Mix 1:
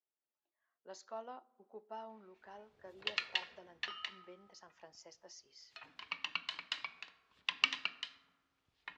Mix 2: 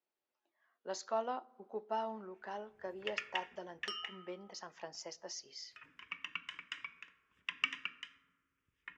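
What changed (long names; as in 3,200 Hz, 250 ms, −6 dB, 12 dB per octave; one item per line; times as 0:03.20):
speech +10.0 dB
first sound: add phaser with its sweep stopped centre 1,800 Hz, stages 4
second sound: remove high-frequency loss of the air 390 metres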